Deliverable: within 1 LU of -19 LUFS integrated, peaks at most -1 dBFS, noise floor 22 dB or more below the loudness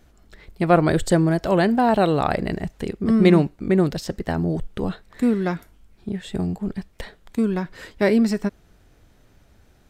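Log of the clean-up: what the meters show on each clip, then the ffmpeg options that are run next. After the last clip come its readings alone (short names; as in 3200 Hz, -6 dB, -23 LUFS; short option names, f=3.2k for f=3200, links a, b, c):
loudness -21.5 LUFS; peak -2.0 dBFS; loudness target -19.0 LUFS
-> -af "volume=2.5dB,alimiter=limit=-1dB:level=0:latency=1"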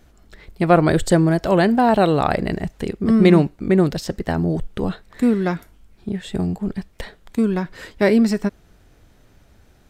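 loudness -19.0 LUFS; peak -1.0 dBFS; noise floor -53 dBFS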